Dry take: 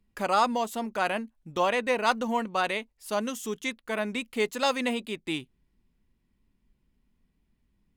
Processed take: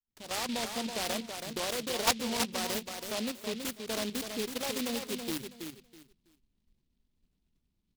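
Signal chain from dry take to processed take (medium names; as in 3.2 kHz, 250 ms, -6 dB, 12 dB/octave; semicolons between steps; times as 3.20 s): fade-in on the opening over 0.67 s; level held to a coarse grid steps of 11 dB; distance through air 110 m; hum notches 50/100/150/200 Hz; feedback delay 326 ms, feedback 22%, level -6.5 dB; delay time shaken by noise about 3.3 kHz, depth 0.18 ms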